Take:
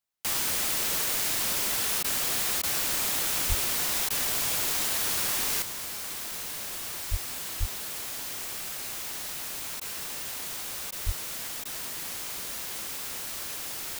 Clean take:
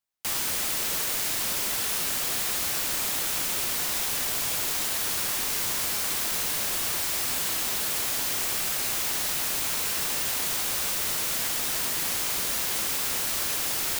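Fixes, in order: de-plosive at 3.48/7.1/7.59/11.05; interpolate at 2.03/2.62/4.09/9.8/10.91/11.64, 12 ms; gain 0 dB, from 5.62 s +8 dB

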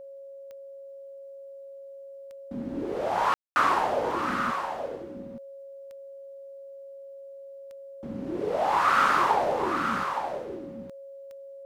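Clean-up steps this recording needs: de-click; notch 550 Hz, Q 30; room tone fill 3.34–3.56; inverse comb 0.868 s -7 dB

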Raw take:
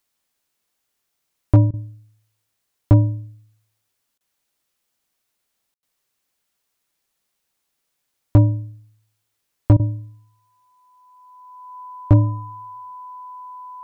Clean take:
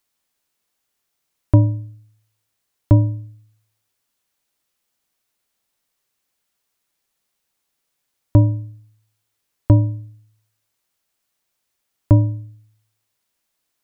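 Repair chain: clip repair -4 dBFS; notch 1000 Hz, Q 30; room tone fill 5.74–5.83; interpolate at 1.71/4.18/9.77, 25 ms

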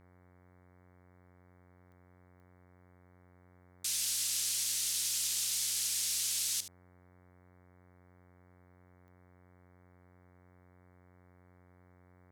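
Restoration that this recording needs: de-click; de-hum 90.3 Hz, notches 25; inverse comb 74 ms -13 dB

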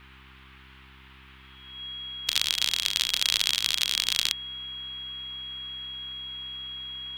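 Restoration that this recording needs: de-hum 65.7 Hz, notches 6; notch 3300 Hz, Q 30; noise print and reduce 23 dB

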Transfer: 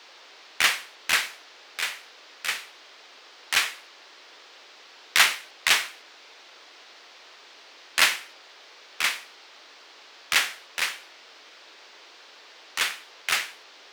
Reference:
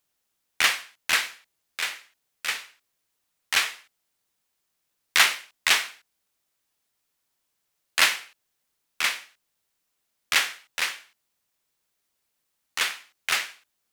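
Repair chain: noise print and reduce 27 dB

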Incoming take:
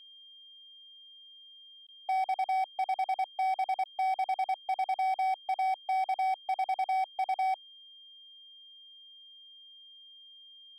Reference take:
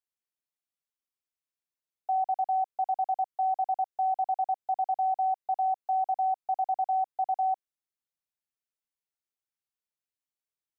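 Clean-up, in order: clip repair -26.5 dBFS; notch 3200 Hz, Q 30; interpolate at 1.87/3.84, 14 ms

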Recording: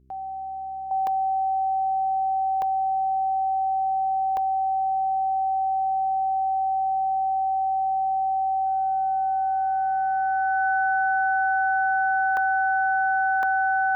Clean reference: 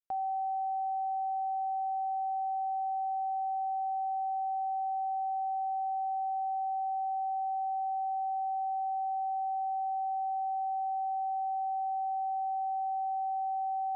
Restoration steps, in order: de-hum 65.5 Hz, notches 6; notch 1500 Hz, Q 30; interpolate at 1.07/2.62/4.37/12.37/13.43, 1.7 ms; gain correction -9 dB, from 0.91

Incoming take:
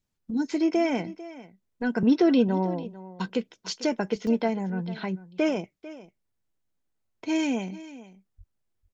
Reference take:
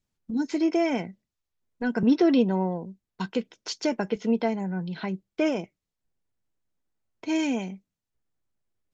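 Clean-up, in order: 8.37–8.49 HPF 140 Hz 24 dB/oct; interpolate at 4.27, 1.5 ms; inverse comb 0.446 s -17 dB

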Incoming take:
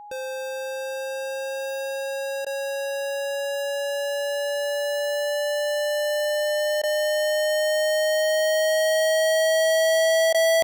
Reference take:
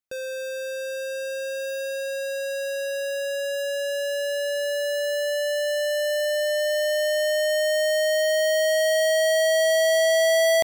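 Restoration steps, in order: notch 830 Hz, Q 30; interpolate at 2.45/6.82/10.33, 13 ms

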